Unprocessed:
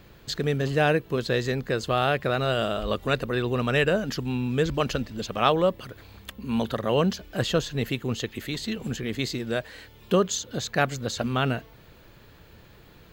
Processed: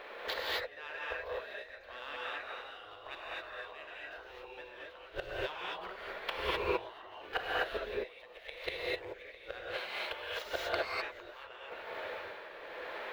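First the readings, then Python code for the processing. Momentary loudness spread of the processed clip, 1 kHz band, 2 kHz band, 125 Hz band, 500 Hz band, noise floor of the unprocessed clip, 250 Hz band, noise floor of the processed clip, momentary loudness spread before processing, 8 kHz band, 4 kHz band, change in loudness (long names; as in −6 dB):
13 LU, −11.5 dB, −7.5 dB, −29.0 dB, −14.0 dB, −52 dBFS, −24.0 dB, −53 dBFS, 9 LU, below −20 dB, −9.5 dB, −13.5 dB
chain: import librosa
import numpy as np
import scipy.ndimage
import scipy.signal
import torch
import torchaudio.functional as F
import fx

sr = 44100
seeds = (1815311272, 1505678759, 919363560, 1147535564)

y = scipy.signal.medfilt(x, 9)
y = fx.high_shelf(y, sr, hz=4800.0, db=-5.0)
y = fx.gate_flip(y, sr, shuts_db=-23.0, range_db=-25)
y = y * (1.0 - 0.67 / 2.0 + 0.67 / 2.0 * np.cos(2.0 * np.pi * 0.93 * (np.arange(len(y)) / sr)))
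y = fx.spec_gate(y, sr, threshold_db=-10, keep='weak')
y = fx.graphic_eq_10(y, sr, hz=(125, 250, 500, 1000, 2000, 4000, 8000), db=(-8, -11, 11, 4, 7, 8, -10))
y = fx.rev_gated(y, sr, seeds[0], gate_ms=280, shape='rising', drr_db=-6.0)
y = F.gain(torch.from_numpy(y), 4.0).numpy()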